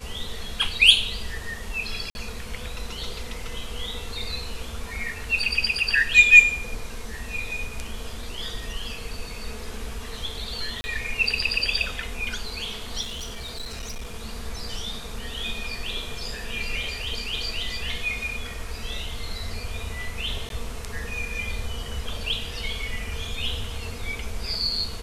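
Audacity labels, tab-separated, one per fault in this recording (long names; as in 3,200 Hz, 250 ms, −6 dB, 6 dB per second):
2.100000	2.150000	drop-out 51 ms
10.810000	10.840000	drop-out 30 ms
13.010000	14.160000	clipping −29.5 dBFS
20.490000	20.500000	drop-out 12 ms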